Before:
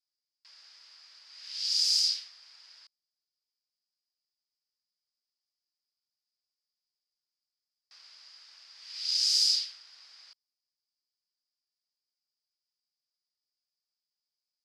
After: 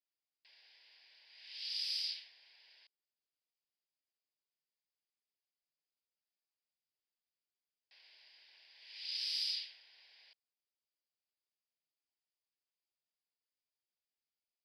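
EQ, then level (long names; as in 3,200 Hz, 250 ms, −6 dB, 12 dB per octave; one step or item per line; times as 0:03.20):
bass and treble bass −13 dB, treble −13 dB
phaser with its sweep stopped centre 3,000 Hz, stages 4
+1.5 dB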